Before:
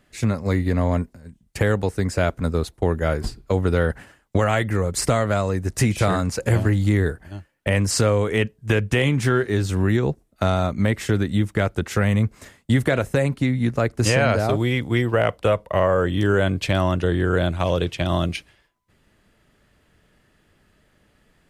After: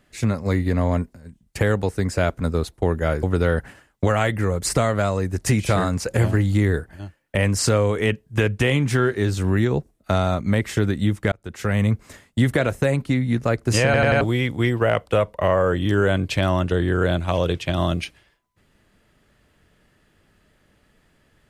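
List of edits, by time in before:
3.23–3.55 s: delete
11.64–12.13 s: fade in
14.17 s: stutter in place 0.09 s, 4 plays

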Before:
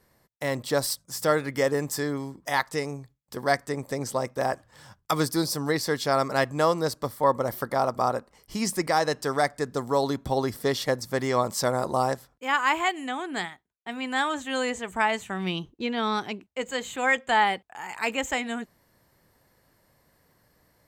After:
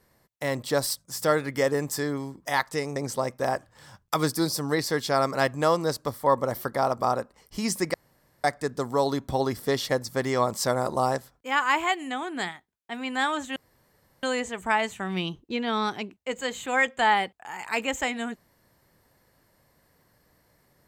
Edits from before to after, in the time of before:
2.96–3.93 s: delete
8.91–9.41 s: room tone
14.53 s: insert room tone 0.67 s

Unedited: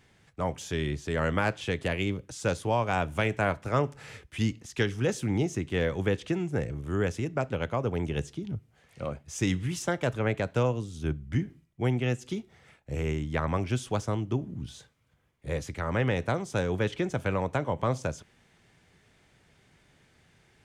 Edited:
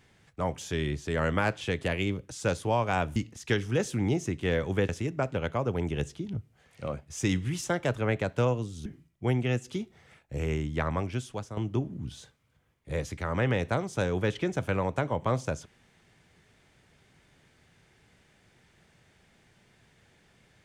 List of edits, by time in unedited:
3.16–4.45 s: delete
6.18–7.07 s: delete
11.04–11.43 s: delete
13.35–14.14 s: fade out, to -11 dB

